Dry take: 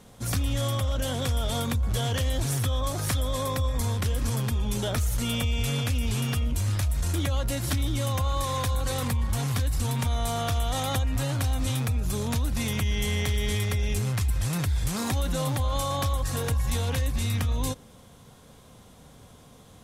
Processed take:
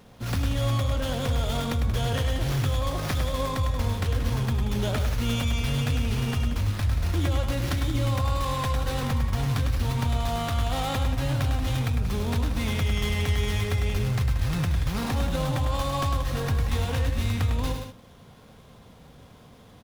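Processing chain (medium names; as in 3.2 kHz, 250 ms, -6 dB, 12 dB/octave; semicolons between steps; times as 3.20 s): loudspeakers at several distances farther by 35 m -6 dB, 62 m -11 dB; sliding maximum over 5 samples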